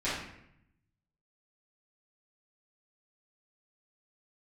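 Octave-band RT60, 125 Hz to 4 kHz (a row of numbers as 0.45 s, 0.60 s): 1.4 s, 1.0 s, 0.80 s, 0.70 s, 0.75 s, 0.55 s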